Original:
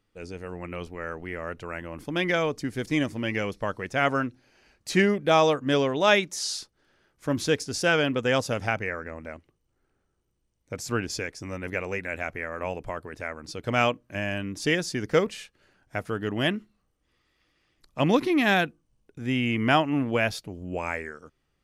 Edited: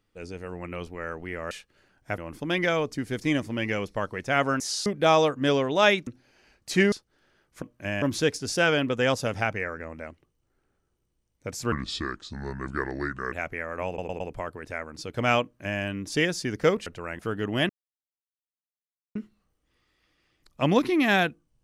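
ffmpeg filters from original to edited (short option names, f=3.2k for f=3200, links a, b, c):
-filter_complex "[0:a]asplit=17[a][b][c][d][e][f][g][h][i][j][k][l][m][n][o][p][q];[a]atrim=end=1.512[r];[b]atrim=start=15.358:end=16.032[s];[c]atrim=start=1.838:end=4.262[t];[d]atrim=start=6.318:end=6.582[u];[e]atrim=start=5.108:end=6.322[v];[f]atrim=start=4.258:end=5.112[w];[g]atrim=start=6.578:end=7.282[x];[h]atrim=start=13.918:end=14.322[y];[i]atrim=start=7.278:end=10.984[z];[j]atrim=start=10.98:end=12.15,asetpts=PTS-STARTPTS,asetrate=32193,aresample=44100[aa];[k]atrim=start=12.146:end=12.812[ab];[l]atrim=start=12.698:end=12.812[ac];[m]atrim=start=12.698:end=12.812[ad];[n]atrim=start=12.698:end=15.362[ae];[o]atrim=start=1.508:end=1.842[af];[p]atrim=start=16.028:end=16.53,asetpts=PTS-STARTPTS,afade=t=out:st=0.498:d=0.004:c=hsin,apad=pad_dur=1.46[ag];[q]atrim=start=16.53,asetpts=PTS-STARTPTS,afade=t=in:d=0.004:c=hsin[ah];[r][s]acrossfade=d=0.004:c1=hsin:c2=hsin[ai];[ai][t]acrossfade=d=0.004:c1=hsin:c2=hsin[aj];[aj][u]acrossfade=d=0.004:c1=hsin:c2=hsin[ak];[ak][v]acrossfade=d=0.004:c1=hsin:c2=hsin[al];[al][w]acrossfade=d=0.004:c1=hsin:c2=hsin[am];[am][x]acrossfade=d=0.004:c1=hsin:c2=hsin[an];[an][y]acrossfade=d=0.004:c1=hsin:c2=hsin[ao];[ao][z]acrossfade=d=0.004:c1=hsin:c2=hsin[ap];[ap][aa]acrossfade=d=0.004:c1=hsin:c2=hsin[aq];[aq][ab]acrossfade=d=0.004:c1=hsin:c2=hsin[ar];[ar][ac]acrossfade=d=0.004:c1=hsin:c2=hsin[as];[as][ad]acrossfade=d=0.004:c1=hsin:c2=hsin[at];[at][ae]acrossfade=d=0.004:c1=hsin:c2=hsin[au];[au][af]acrossfade=d=0.004:c1=hsin:c2=hsin[av];[ag][ah]concat=n=2:v=0:a=1[aw];[av][aw]acrossfade=d=0.004:c1=hsin:c2=hsin"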